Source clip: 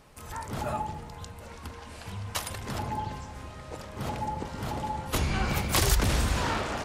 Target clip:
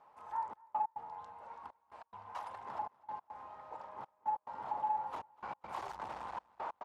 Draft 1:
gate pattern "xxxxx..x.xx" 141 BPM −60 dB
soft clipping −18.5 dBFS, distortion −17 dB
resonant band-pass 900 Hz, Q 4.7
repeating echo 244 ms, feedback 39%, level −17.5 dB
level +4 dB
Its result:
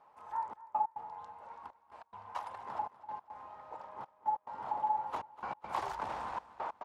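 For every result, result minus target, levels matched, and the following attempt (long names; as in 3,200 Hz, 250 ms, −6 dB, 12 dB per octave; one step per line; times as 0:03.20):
soft clipping: distortion −10 dB; echo-to-direct +7 dB
gate pattern "xxxxx..x.xx" 141 BPM −60 dB
soft clipping −29 dBFS, distortion −7 dB
resonant band-pass 900 Hz, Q 4.7
repeating echo 244 ms, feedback 39%, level −17.5 dB
level +4 dB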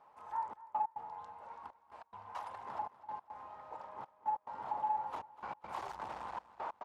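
echo-to-direct +7 dB
gate pattern "xxxxx..x.xx" 141 BPM −60 dB
soft clipping −29 dBFS, distortion −7 dB
resonant band-pass 900 Hz, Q 4.7
repeating echo 244 ms, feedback 39%, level −24.5 dB
level +4 dB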